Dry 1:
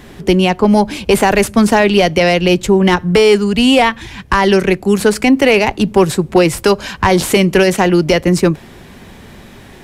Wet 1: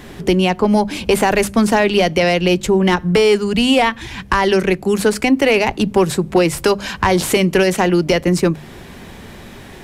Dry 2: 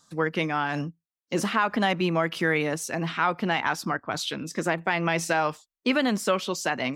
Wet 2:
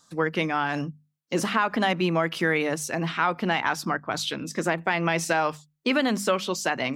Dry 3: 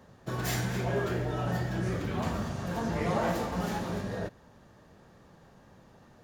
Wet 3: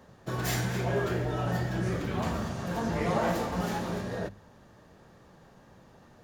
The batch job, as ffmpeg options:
-filter_complex "[0:a]bandreject=f=50:t=h:w=6,bandreject=f=100:t=h:w=6,bandreject=f=150:t=h:w=6,bandreject=f=200:t=h:w=6,bandreject=f=250:t=h:w=6,asplit=2[s0][s1];[s1]acompressor=threshold=0.112:ratio=6,volume=1.33[s2];[s0][s2]amix=inputs=2:normalize=0,volume=0.501"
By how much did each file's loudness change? -3.5 LU, +0.5 LU, +1.0 LU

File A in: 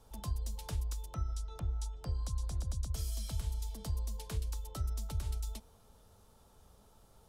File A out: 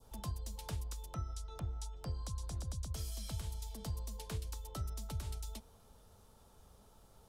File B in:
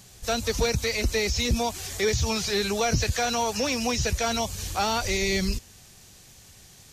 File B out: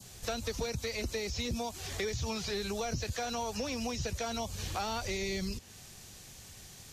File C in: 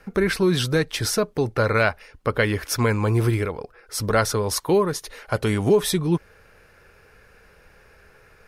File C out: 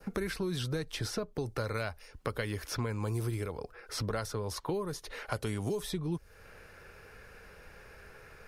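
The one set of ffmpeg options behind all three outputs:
-filter_complex "[0:a]adynamicequalizer=threshold=0.00891:dfrequency=2000:dqfactor=1.1:tfrequency=2000:tqfactor=1.1:attack=5:release=100:ratio=0.375:range=2:mode=cutabove:tftype=bell,acrossover=split=81|4500[s0][s1][s2];[s0]acompressor=threshold=0.00562:ratio=4[s3];[s1]acompressor=threshold=0.0178:ratio=4[s4];[s2]acompressor=threshold=0.00355:ratio=4[s5];[s3][s4][s5]amix=inputs=3:normalize=0"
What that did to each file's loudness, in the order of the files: -4.0 LU, -10.0 LU, -13.5 LU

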